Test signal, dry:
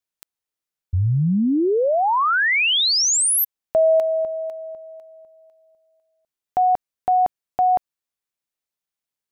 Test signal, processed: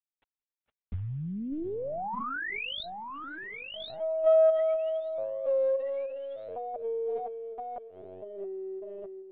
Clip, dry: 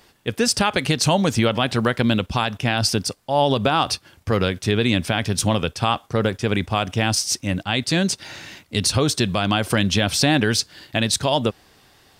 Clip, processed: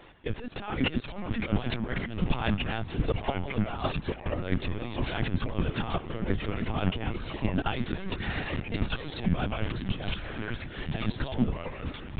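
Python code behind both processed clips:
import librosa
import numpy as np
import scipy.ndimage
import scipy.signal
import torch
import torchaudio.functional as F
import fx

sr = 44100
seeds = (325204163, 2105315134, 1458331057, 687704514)

y = fx.gate_hold(x, sr, open_db=-51.0, close_db=-52.0, hold_ms=410.0, range_db=-22, attack_ms=1.7, release_ms=103.0)
y = scipy.signal.sosfilt(scipy.signal.butter(2, 45.0, 'highpass', fs=sr, output='sos'), y)
y = fx.over_compress(y, sr, threshold_db=-26.0, ratio=-0.5)
y = fx.quant_companded(y, sr, bits=6)
y = fx.cheby_harmonics(y, sr, harmonics=(4, 7, 8), levels_db=(-44, -31, -36), full_scale_db=-4.5)
y = fx.air_absorb(y, sr, metres=250.0)
y = fx.echo_pitch(y, sr, ms=409, semitones=-3, count=3, db_per_echo=-6.0)
y = fx.echo_swing(y, sr, ms=793, ratio=1.5, feedback_pct=63, wet_db=-23.5)
y = fx.lpc_vocoder(y, sr, seeds[0], excitation='pitch_kept', order=16)
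y = fx.doppler_dist(y, sr, depth_ms=0.13)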